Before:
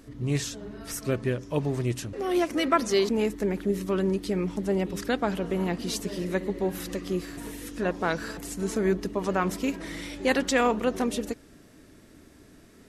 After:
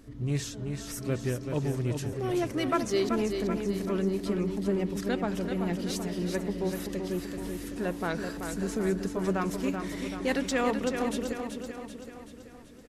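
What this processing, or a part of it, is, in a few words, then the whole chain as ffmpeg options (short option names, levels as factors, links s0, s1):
parallel distortion: -filter_complex "[0:a]lowshelf=f=210:g=5.5,asplit=2[s0][s1];[s1]asoftclip=type=hard:threshold=0.0473,volume=0.355[s2];[s0][s2]amix=inputs=2:normalize=0,aecho=1:1:383|766|1149|1532|1915|2298|2681:0.473|0.256|0.138|0.0745|0.0402|0.0217|0.0117,volume=0.447"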